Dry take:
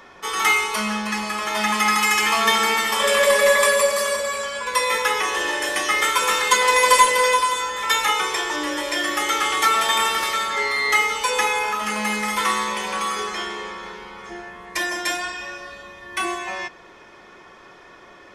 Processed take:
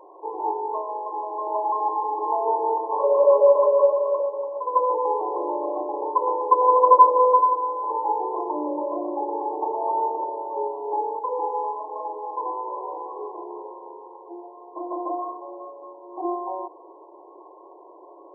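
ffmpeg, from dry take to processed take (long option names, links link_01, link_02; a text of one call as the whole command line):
ffmpeg -i in.wav -filter_complex "[0:a]asettb=1/sr,asplit=3[link_01][link_02][link_03];[link_01]atrim=end=11.194[link_04];[link_02]atrim=start=11.19:end=14.91,asetpts=PTS-STARTPTS,afade=type=in:duration=0.004:curve=qsin,afade=type=out:start_time=3.716:duration=0.004:curve=qsin,flanger=delay=6.1:depth=6.1:regen=-57:speed=1.1:shape=sinusoidal[link_05];[link_03]atrim=start=14.906[link_06];[link_04][link_05]acrossfade=duration=0.004:curve1=hsin:curve2=qsin[link_07];[link_07][link_06]acrossfade=duration=0.004:curve1=qsin:curve2=hsin,afftfilt=real='re*between(b*sr/4096,300,1100)':imag='im*between(b*sr/4096,300,1100)':win_size=4096:overlap=0.75,volume=2.5dB" out.wav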